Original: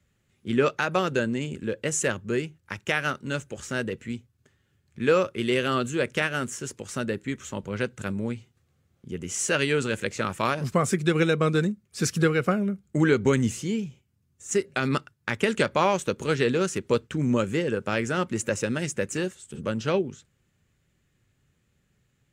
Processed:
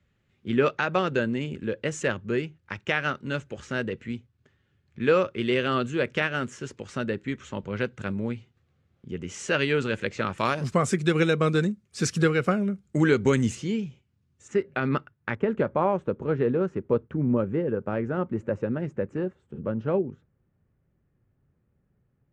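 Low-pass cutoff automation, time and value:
4 kHz
from 10.38 s 8.4 kHz
from 13.55 s 4.8 kHz
from 14.48 s 2 kHz
from 15.35 s 1 kHz

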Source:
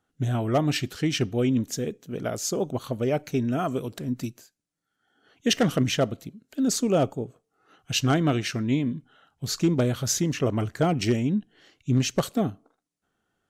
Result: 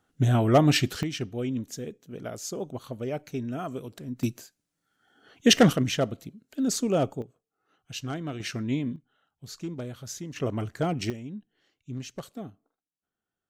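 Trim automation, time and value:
+4 dB
from 1.03 s -7 dB
from 4.23 s +4.5 dB
from 5.73 s -2.5 dB
from 7.22 s -11.5 dB
from 8.40 s -4 dB
from 8.96 s -13 dB
from 10.36 s -4.5 dB
from 11.10 s -14 dB

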